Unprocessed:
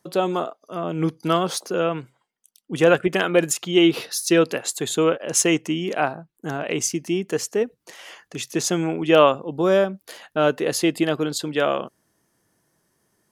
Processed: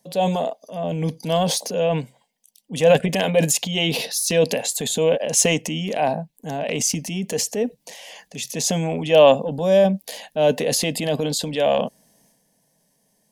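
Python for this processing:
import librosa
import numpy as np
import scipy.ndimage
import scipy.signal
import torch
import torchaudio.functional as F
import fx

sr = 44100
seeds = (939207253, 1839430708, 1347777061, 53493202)

y = fx.fixed_phaser(x, sr, hz=350.0, stages=6)
y = fx.transient(y, sr, attack_db=-4, sustain_db=7)
y = F.gain(torch.from_numpy(y), 4.5).numpy()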